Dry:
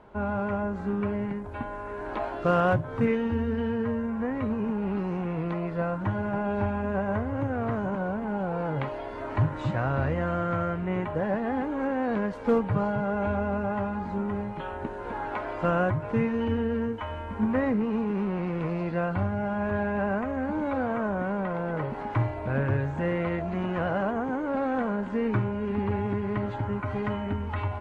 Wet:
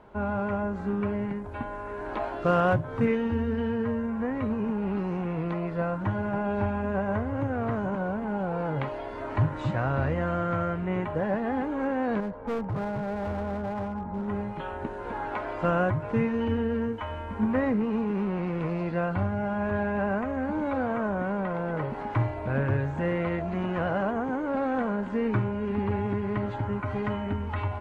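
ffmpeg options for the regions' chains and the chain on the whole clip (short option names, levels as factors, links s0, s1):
-filter_complex "[0:a]asettb=1/sr,asplit=3[s0][s1][s2];[s0]atrim=end=12.204[s3];[s1]atrim=start=12.2:end=14.28,asetpts=PTS-STARTPTS,afade=t=in:d=0.004:c=qsin,afade=t=out:st=2.076:d=0.004:c=qsin,lowpass=1100,equalizer=f=330:w=1.2:g=-4,volume=22.4,asoftclip=hard,volume=0.0447[s4];[s2]atrim=start=14.276[s5];[s3][s4]acrossfade=d=0.004:c1=hsin:c2=qsin[s6];[s6][s5]acrossfade=d=0.004:c1=qsin:c2=hsin"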